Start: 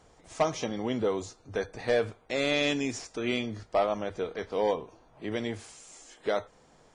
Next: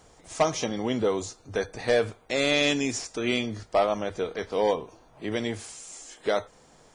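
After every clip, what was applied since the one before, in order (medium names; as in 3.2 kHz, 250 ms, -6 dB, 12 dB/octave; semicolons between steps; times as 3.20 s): treble shelf 5.5 kHz +7.5 dB; trim +3 dB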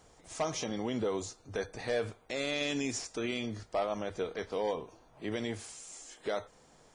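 peak limiter -19 dBFS, peak gain reduction 6.5 dB; trim -5 dB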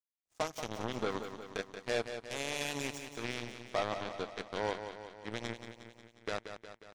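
power-law waveshaper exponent 3; feedback delay 180 ms, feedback 59%, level -9 dB; trim +2.5 dB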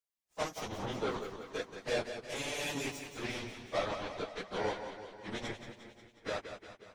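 phase randomisation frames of 50 ms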